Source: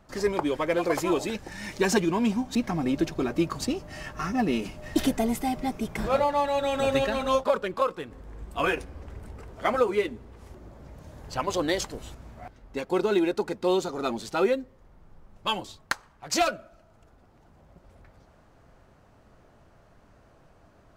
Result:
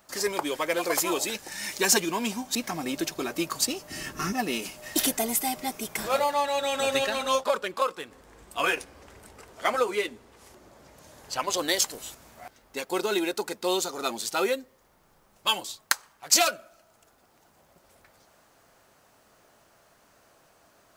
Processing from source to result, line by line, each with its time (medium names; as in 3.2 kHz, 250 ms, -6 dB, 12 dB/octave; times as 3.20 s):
3.90–4.33 s: resonant low shelf 460 Hz +9 dB, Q 1.5
6.34–11.58 s: treble shelf 12 kHz -11.5 dB
whole clip: RIAA curve recording